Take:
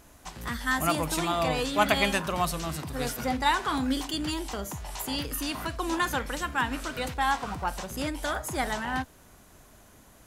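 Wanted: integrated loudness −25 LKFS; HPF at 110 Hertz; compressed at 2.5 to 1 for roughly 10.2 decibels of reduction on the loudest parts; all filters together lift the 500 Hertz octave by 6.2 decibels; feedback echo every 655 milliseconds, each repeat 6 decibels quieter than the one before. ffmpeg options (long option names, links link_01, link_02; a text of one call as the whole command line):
ffmpeg -i in.wav -af "highpass=110,equalizer=frequency=500:width_type=o:gain=8,acompressor=threshold=-31dB:ratio=2.5,aecho=1:1:655|1310|1965|2620|3275|3930:0.501|0.251|0.125|0.0626|0.0313|0.0157,volume=7dB" out.wav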